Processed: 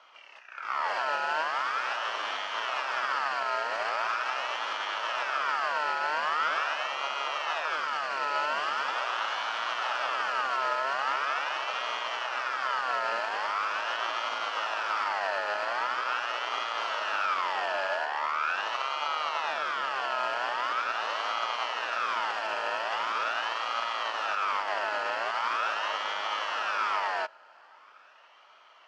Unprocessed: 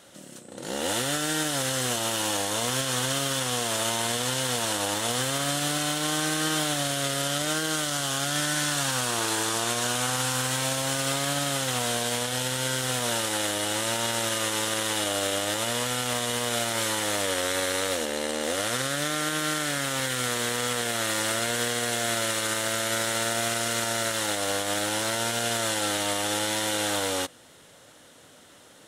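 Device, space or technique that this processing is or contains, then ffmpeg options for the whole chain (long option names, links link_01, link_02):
voice changer toy: -af "aeval=exprs='val(0)*sin(2*PI*1900*n/s+1900*0.4/0.42*sin(2*PI*0.42*n/s))':channel_layout=same,highpass=600,equalizer=frequency=620:width_type=q:width=4:gain=7,equalizer=frequency=920:width_type=q:width=4:gain=5,equalizer=frequency=1300:width_type=q:width=4:gain=10,equalizer=frequency=2100:width_type=q:width=4:gain=-7,equalizer=frequency=3800:width_type=q:width=4:gain=-9,lowpass=frequency=3900:width=0.5412,lowpass=frequency=3900:width=1.3066"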